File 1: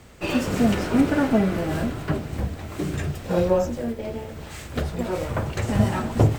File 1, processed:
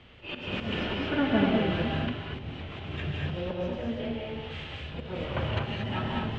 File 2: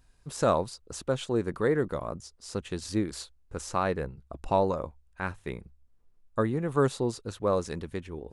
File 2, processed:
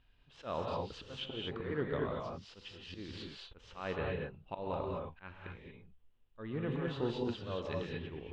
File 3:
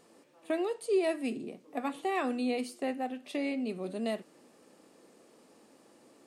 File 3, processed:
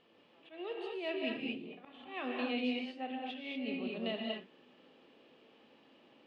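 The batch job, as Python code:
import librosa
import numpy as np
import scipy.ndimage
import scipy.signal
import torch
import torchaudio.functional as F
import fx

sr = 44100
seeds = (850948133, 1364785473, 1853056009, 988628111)

y = fx.auto_swell(x, sr, attack_ms=236.0)
y = fx.ladder_lowpass(y, sr, hz=3400.0, resonance_pct=65)
y = fx.rev_gated(y, sr, seeds[0], gate_ms=260, shape='rising', drr_db=-1.0)
y = y * librosa.db_to_amplitude(4.0)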